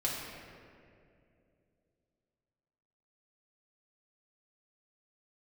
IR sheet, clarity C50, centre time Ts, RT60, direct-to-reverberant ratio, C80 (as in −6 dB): 0.0 dB, 110 ms, 2.5 s, −6.0 dB, 2.0 dB